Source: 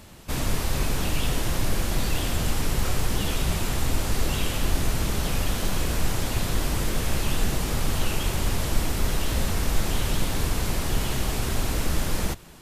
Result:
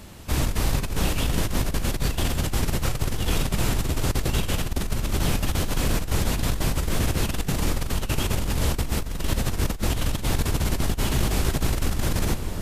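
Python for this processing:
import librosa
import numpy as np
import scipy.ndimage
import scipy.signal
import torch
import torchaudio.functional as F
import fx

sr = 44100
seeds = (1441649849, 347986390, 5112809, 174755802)

p1 = fx.octave_divider(x, sr, octaves=1, level_db=1.0)
p2 = p1 + fx.echo_alternate(p1, sr, ms=329, hz=1100.0, feedback_pct=66, wet_db=-9, dry=0)
y = fx.over_compress(p2, sr, threshold_db=-22.0, ratio=-0.5)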